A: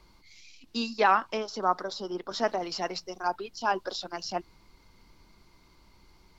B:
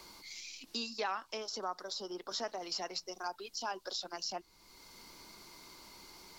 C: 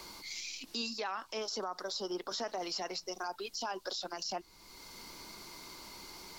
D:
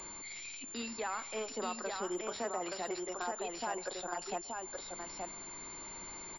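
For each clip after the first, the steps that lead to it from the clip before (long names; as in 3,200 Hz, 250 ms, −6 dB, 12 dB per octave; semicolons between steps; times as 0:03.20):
downward compressor 1.5 to 1, threshold −48 dBFS, peak gain reduction 11 dB; bass and treble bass −8 dB, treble +10 dB; multiband upward and downward compressor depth 40%; level −2 dB
brickwall limiter −33 dBFS, peak gain reduction 9.5 dB; level +5 dB
single-tap delay 874 ms −4 dB; on a send at −22 dB: convolution reverb RT60 0.60 s, pre-delay 117 ms; on the sum: switching amplifier with a slow clock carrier 7,200 Hz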